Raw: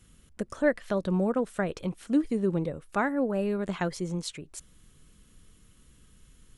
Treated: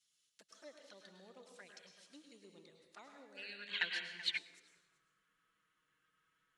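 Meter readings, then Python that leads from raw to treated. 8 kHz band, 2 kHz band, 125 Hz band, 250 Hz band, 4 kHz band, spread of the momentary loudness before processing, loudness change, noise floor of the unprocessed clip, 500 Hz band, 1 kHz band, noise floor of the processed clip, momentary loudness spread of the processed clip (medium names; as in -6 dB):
-16.0 dB, -6.5 dB, -36.0 dB, -34.5 dB, +2.5 dB, 12 LU, -11.0 dB, -59 dBFS, -29.5 dB, -24.0 dB, -82 dBFS, 21 LU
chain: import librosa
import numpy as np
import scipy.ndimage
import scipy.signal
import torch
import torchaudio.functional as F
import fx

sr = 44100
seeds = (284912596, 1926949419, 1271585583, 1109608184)

p1 = x + fx.echo_single(x, sr, ms=381, db=-15.5, dry=0)
p2 = fx.env_flanger(p1, sr, rest_ms=7.1, full_db=-23.0)
p3 = fx.rev_plate(p2, sr, seeds[0], rt60_s=0.9, hf_ratio=0.95, predelay_ms=90, drr_db=3.5)
p4 = fx.spec_box(p3, sr, start_s=3.37, length_s=1.01, low_hz=1400.0, high_hz=4700.0, gain_db=11)
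p5 = np.clip(p4, -10.0 ** (-21.5 / 20.0), 10.0 ** (-21.5 / 20.0))
p6 = p4 + F.gain(torch.from_numpy(p5), -12.0).numpy()
p7 = fx.filter_sweep_bandpass(p6, sr, from_hz=4900.0, to_hz=1500.0, start_s=3.35, end_s=4.88, q=2.0)
p8 = fx.upward_expand(p7, sr, threshold_db=-47.0, expansion=1.5)
y = F.gain(torch.from_numpy(p8), 1.0).numpy()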